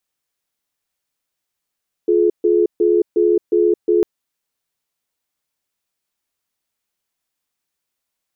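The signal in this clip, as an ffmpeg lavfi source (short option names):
-f lavfi -i "aevalsrc='0.2*(sin(2*PI*350*t)+sin(2*PI*425*t))*clip(min(mod(t,0.36),0.22-mod(t,0.36))/0.005,0,1)':d=1.95:s=44100"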